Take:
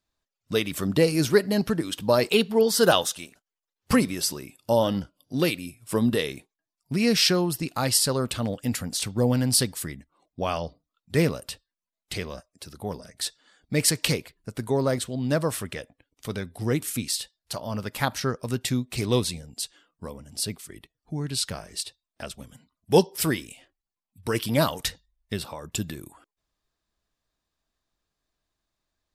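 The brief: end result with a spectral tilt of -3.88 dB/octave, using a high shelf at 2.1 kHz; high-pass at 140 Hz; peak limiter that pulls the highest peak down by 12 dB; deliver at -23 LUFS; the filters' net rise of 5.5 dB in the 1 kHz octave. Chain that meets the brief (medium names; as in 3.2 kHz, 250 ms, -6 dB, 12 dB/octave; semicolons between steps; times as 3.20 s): high-pass 140 Hz; peaking EQ 1 kHz +6 dB; treble shelf 2.1 kHz +4.5 dB; trim +4.5 dB; peak limiter -9 dBFS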